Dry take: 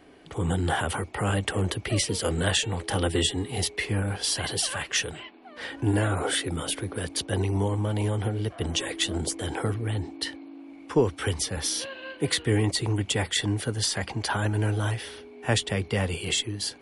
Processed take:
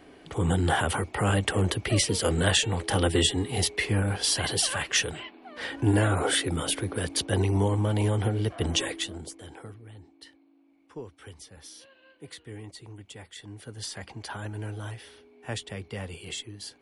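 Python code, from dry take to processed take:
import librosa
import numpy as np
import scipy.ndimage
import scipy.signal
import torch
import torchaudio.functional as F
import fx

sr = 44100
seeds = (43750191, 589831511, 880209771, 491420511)

y = fx.gain(x, sr, db=fx.line((8.84, 1.5), (9.15, -10.0), (9.9, -18.5), (13.42, -18.5), (13.85, -10.0)))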